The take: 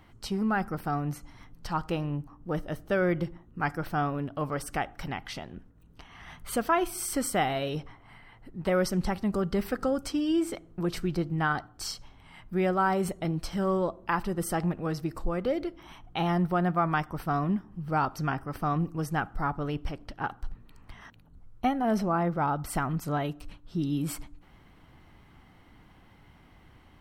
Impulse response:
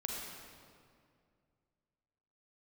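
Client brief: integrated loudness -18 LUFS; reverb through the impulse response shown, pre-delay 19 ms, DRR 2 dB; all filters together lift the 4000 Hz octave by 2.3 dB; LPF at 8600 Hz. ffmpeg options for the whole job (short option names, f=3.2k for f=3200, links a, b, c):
-filter_complex "[0:a]lowpass=8.6k,equalizer=f=4k:t=o:g=3.5,asplit=2[a][b];[1:a]atrim=start_sample=2205,adelay=19[c];[b][c]afir=irnorm=-1:irlink=0,volume=-3.5dB[d];[a][d]amix=inputs=2:normalize=0,volume=10dB"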